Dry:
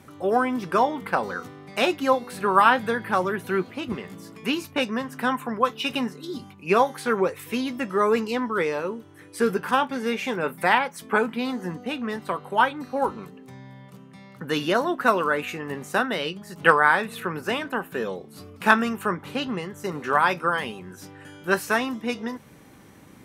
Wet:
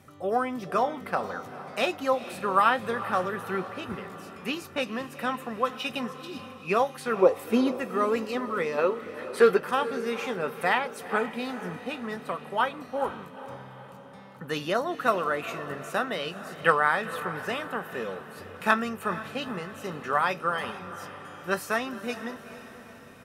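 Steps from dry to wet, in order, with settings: spectral gain 7.23–7.72, 200–1100 Hz +11 dB; comb 1.6 ms, depth 31%; spectral gain 8.78–9.59, 310–4600 Hz +10 dB; diffused feedback echo 0.458 s, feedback 55%, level -13 dB; gain -5 dB

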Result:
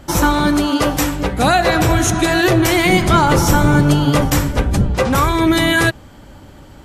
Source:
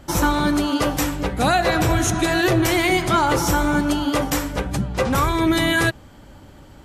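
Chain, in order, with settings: 2.85–4.95 octaver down 1 oct, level +3 dB; gain +4.5 dB

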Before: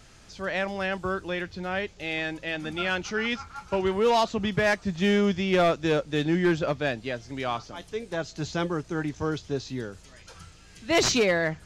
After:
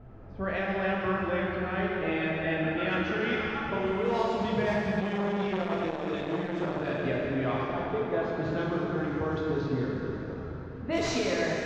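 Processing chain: LPF 2900 Hz 6 dB/oct; low-pass opened by the level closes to 730 Hz, open at -20.5 dBFS; compressor 10:1, threshold -35 dBFS, peak gain reduction 16 dB; plate-style reverb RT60 3.9 s, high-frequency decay 0.75×, DRR -5 dB; 5–7.05 core saturation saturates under 780 Hz; gain +4 dB

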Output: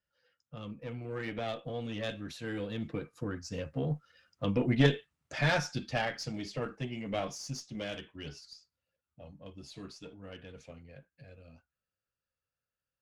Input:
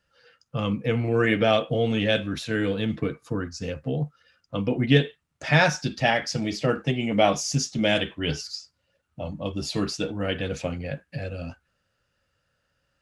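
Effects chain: one diode to ground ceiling -19 dBFS; Doppler pass-by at 4.5, 10 m/s, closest 8.8 m; gain -2.5 dB

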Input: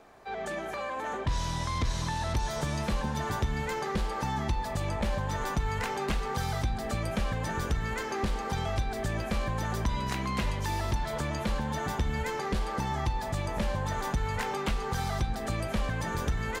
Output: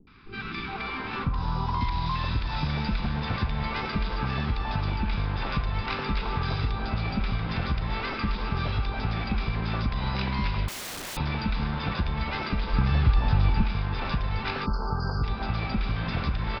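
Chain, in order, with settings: minimum comb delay 0.82 ms; 1.18–1.74 ten-band EQ 250 Hz +5 dB, 500 Hz -7 dB, 1000 Hz +11 dB, 2000 Hz -10 dB, 4000 Hz -6 dB; downsampling 11025 Hz; three bands offset in time lows, highs, mids 70/420 ms, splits 360/1200 Hz; on a send at -12.5 dB: reverb RT60 0.30 s, pre-delay 97 ms; on the sum: compressor, threshold -30 dBFS, peak gain reduction 7 dB; 10.68–11.17 wrapped overs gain 39 dB; 12.73–13.64 low shelf 160 Hz +9.5 dB; 14.66–15.24 spectral delete 1600–4200 Hz; gain +7 dB

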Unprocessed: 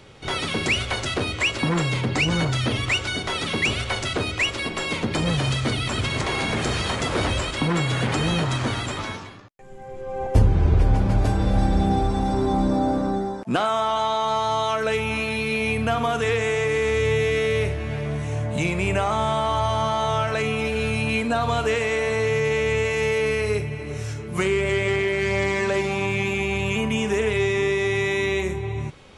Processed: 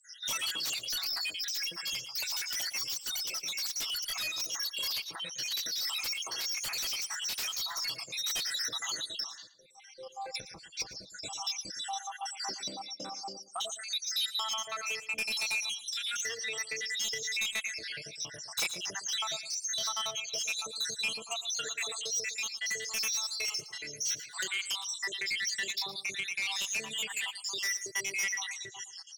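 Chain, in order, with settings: random spectral dropouts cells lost 79%; comb 6.1 ms, depth 47%; compressor 6:1, threshold -28 dBFS, peak gain reduction 14 dB; band-pass 5400 Hz, Q 6; sine folder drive 17 dB, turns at -30.5 dBFS; on a send: feedback echo 0.114 s, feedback 19%, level -15 dB; on the sum: vocal rider within 3 dB 2 s; gain +2 dB; Vorbis 96 kbps 44100 Hz

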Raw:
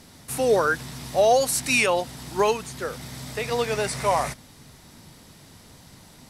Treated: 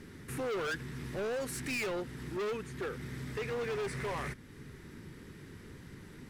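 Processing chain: EQ curve 260 Hz 0 dB, 400 Hz +6 dB, 670 Hz -15 dB, 1700 Hz +2 dB, 4300 Hz -13 dB; in parallel at +2 dB: compressor 4:1, threshold -46 dBFS, peak gain reduction 26 dB; on the sum: hard clip -27 dBFS, distortion -4 dB; gain -6 dB

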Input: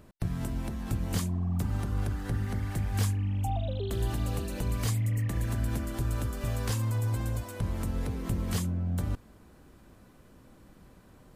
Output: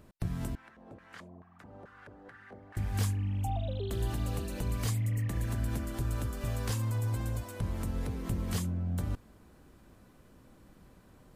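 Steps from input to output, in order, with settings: 0.55–2.77 LFO band-pass square 2.3 Hz 550–1600 Hz; gain -2.5 dB

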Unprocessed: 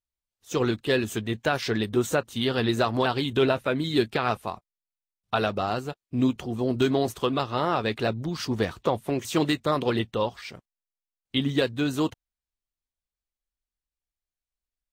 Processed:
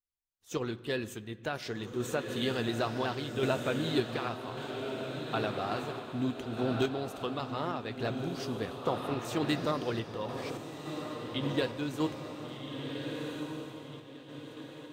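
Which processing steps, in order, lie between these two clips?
diffused feedback echo 1.479 s, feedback 44%, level -5 dB; on a send at -14.5 dB: reverb RT60 2.3 s, pre-delay 6 ms; on the sum: random-step tremolo; gain -6 dB

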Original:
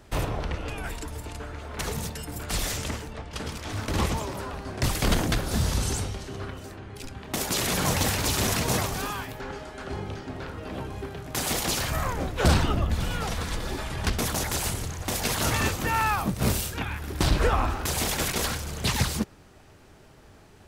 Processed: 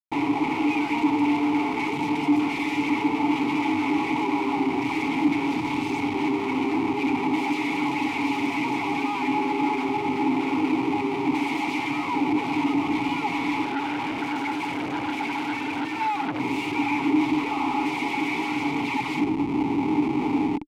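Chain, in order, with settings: HPF 84 Hz 6 dB/oct; tone controls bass -6 dB, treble -9 dB; comb 7.2 ms, depth 95%; dynamic EQ 2100 Hz, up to +3 dB, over -41 dBFS, Q 1.9; AGC gain up to 13 dB; Schmitt trigger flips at -39.5 dBFS; vowel filter u; 13.65–16.4 core saturation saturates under 1300 Hz; gain +7 dB

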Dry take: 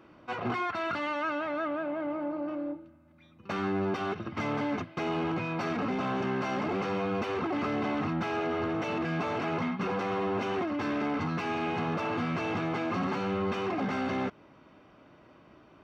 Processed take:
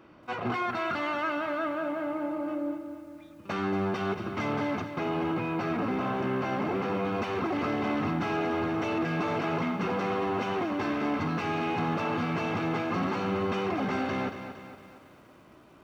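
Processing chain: 4.96–7.05 high shelf 4500 Hz -10.5 dB; lo-fi delay 0.23 s, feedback 55%, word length 10-bit, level -9.5 dB; gain +1 dB

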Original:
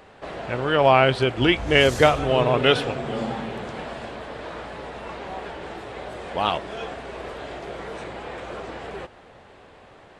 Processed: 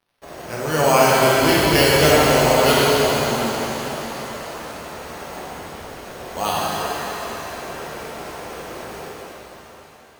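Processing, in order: 5.42–6.06 Schmitt trigger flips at -39 dBFS; careless resampling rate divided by 6×, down none, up hold; crossover distortion -43 dBFS; shimmer reverb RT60 3.6 s, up +7 st, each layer -8 dB, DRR -6.5 dB; gain -3.5 dB

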